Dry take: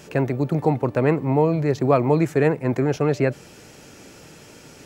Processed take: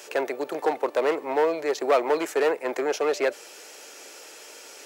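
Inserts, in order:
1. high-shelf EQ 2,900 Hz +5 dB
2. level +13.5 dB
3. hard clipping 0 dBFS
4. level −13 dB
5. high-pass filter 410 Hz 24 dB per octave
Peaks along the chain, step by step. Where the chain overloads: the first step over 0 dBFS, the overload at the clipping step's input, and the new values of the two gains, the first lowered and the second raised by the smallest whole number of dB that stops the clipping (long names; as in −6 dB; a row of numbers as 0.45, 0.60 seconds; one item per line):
−5.0, +8.5, 0.0, −13.0, −8.5 dBFS
step 2, 8.5 dB
step 2 +4.5 dB, step 4 −4 dB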